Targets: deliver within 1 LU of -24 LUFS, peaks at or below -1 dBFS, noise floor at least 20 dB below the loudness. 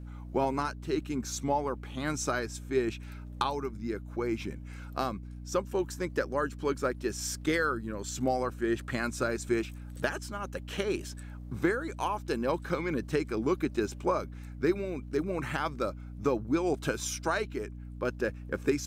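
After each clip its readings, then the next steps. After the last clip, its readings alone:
hum 60 Hz; harmonics up to 300 Hz; hum level -40 dBFS; loudness -32.5 LUFS; peak -15.0 dBFS; loudness target -24.0 LUFS
-> notches 60/120/180/240/300 Hz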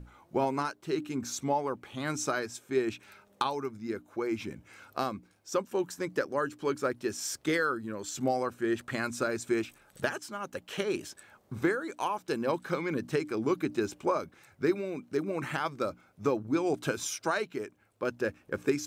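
hum none; loudness -32.5 LUFS; peak -15.0 dBFS; loudness target -24.0 LUFS
-> gain +8.5 dB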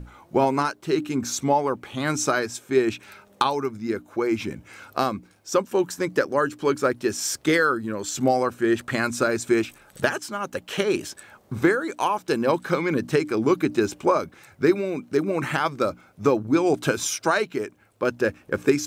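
loudness -24.0 LUFS; peak -6.5 dBFS; noise floor -56 dBFS

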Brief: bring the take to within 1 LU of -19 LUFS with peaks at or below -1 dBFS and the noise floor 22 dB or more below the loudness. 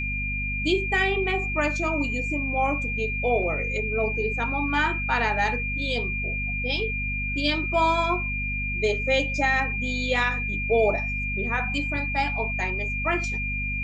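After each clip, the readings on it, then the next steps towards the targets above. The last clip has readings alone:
hum 50 Hz; harmonics up to 250 Hz; hum level -29 dBFS; steady tone 2400 Hz; tone level -28 dBFS; loudness -24.5 LUFS; peak -10.5 dBFS; loudness target -19.0 LUFS
-> notches 50/100/150/200/250 Hz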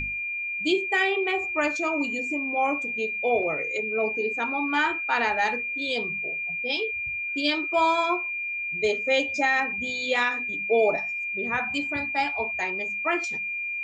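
hum none; steady tone 2400 Hz; tone level -28 dBFS
-> notch 2400 Hz, Q 30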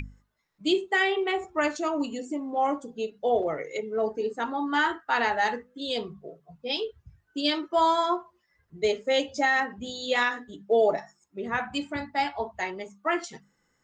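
steady tone none; loudness -27.5 LUFS; peak -12.5 dBFS; loudness target -19.0 LUFS
-> gain +8.5 dB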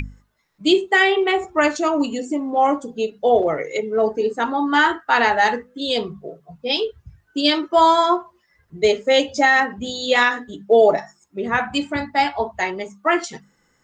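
loudness -19.0 LUFS; peak -4.0 dBFS; noise floor -64 dBFS

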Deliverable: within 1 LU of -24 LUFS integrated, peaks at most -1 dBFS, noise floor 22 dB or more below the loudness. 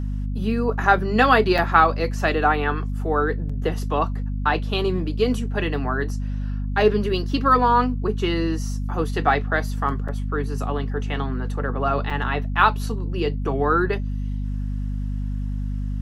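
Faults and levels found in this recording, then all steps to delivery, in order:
dropouts 4; longest dropout 5.3 ms; hum 50 Hz; harmonics up to 250 Hz; hum level -23 dBFS; loudness -22.5 LUFS; peak -2.0 dBFS; loudness target -24.0 LUFS
-> interpolate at 1.58/3.49/10.08/12.1, 5.3 ms; de-hum 50 Hz, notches 5; gain -1.5 dB

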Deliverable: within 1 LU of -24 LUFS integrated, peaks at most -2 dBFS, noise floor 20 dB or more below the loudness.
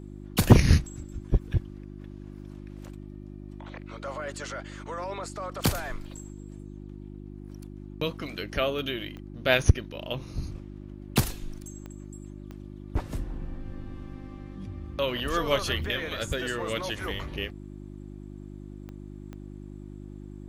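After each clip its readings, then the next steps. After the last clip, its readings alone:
clicks 7; hum 50 Hz; harmonics up to 350 Hz; hum level -40 dBFS; loudness -29.0 LUFS; peak -2.5 dBFS; loudness target -24.0 LUFS
-> de-click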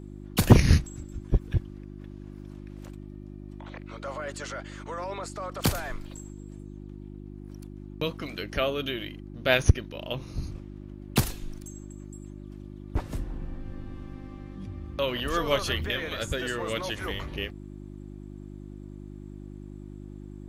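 clicks 0; hum 50 Hz; harmonics up to 350 Hz; hum level -40 dBFS
-> de-hum 50 Hz, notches 7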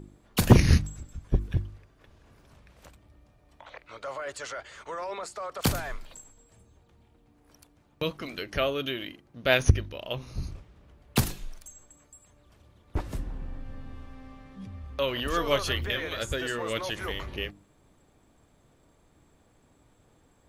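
hum none; loudness -29.0 LUFS; peak -3.5 dBFS; loudness target -24.0 LUFS
-> gain +5 dB; limiter -2 dBFS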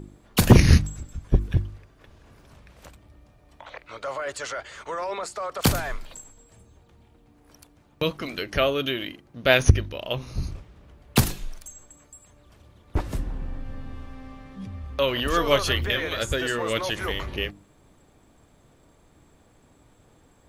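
loudness -24.5 LUFS; peak -2.0 dBFS; noise floor -58 dBFS

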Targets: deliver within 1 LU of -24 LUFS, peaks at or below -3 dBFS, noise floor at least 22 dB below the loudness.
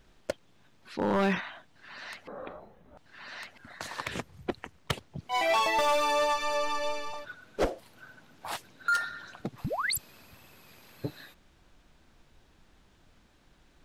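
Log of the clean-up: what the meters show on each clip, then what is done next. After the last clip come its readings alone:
clipped 0.7%; flat tops at -21.0 dBFS; loudness -31.5 LUFS; peak -21.0 dBFS; loudness target -24.0 LUFS
-> clip repair -21 dBFS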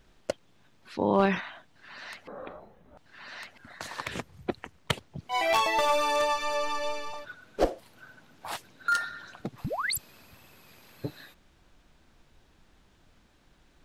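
clipped 0.0%; loudness -30.0 LUFS; peak -12.0 dBFS; loudness target -24.0 LUFS
-> gain +6 dB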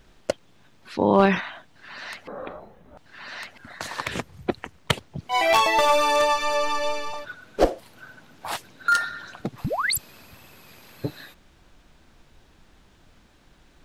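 loudness -24.0 LUFS; peak -6.0 dBFS; noise floor -57 dBFS

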